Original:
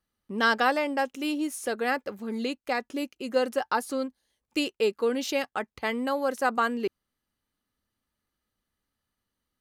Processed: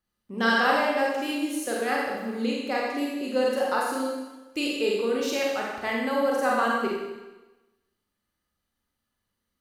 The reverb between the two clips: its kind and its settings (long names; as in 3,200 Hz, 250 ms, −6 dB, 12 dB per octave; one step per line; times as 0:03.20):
four-comb reverb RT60 1.1 s, combs from 31 ms, DRR −3.5 dB
level −3 dB